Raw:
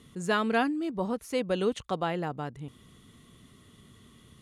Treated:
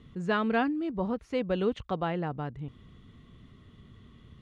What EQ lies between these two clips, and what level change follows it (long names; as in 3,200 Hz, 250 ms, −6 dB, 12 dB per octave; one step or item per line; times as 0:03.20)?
low-pass filter 3,300 Hz 12 dB per octave
low-shelf EQ 110 Hz +11.5 dB
−1.5 dB